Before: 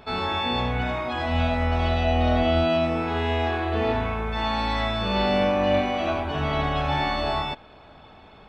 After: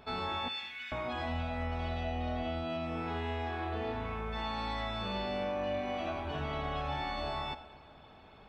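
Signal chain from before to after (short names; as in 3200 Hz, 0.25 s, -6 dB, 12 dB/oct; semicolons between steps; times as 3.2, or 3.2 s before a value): 0.48–0.92 inverse Chebyshev high-pass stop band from 410 Hz, stop band 70 dB; compressor 4:1, threshold -26 dBFS, peak gain reduction 8.5 dB; non-linear reverb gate 0.49 s falling, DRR 12 dB; gain -7.5 dB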